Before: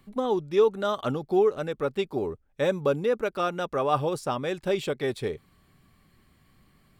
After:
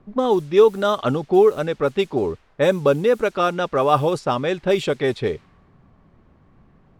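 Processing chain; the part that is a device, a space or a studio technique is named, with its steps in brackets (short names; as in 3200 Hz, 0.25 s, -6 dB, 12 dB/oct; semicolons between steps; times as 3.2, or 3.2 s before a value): cassette deck with a dynamic noise filter (white noise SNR 31 dB; low-pass opened by the level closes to 880 Hz, open at -21.5 dBFS); gain +7.5 dB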